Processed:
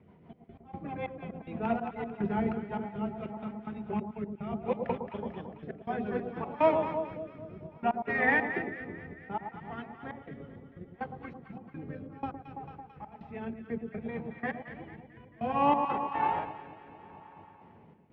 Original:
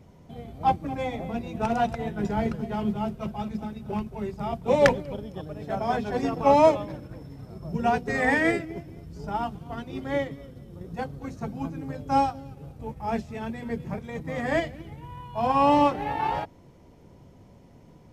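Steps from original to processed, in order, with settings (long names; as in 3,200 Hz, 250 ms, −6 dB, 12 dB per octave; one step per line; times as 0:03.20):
loudspeaker in its box 120–2,700 Hz, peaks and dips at 130 Hz −8 dB, 280 Hz −5 dB, 560 Hz −6 dB
hum removal 269.4 Hz, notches 5
gate pattern "xxxx..x.." 184 BPM −24 dB
delay that swaps between a low-pass and a high-pass 111 ms, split 1,000 Hz, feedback 78%, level −7 dB
rotating-speaker cabinet horn 6.3 Hz, later 0.65 Hz, at 0:02.22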